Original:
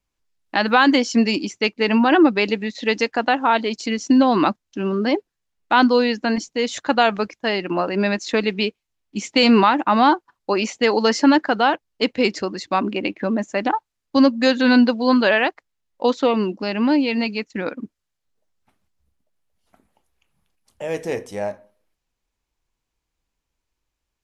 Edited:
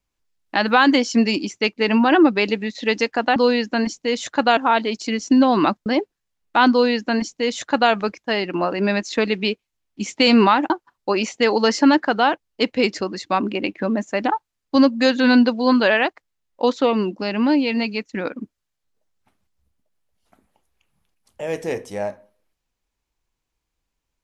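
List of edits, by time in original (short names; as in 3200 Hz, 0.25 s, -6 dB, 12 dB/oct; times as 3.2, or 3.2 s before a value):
4.65–5.02 cut
5.87–7.08 copy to 3.36
9.86–10.11 cut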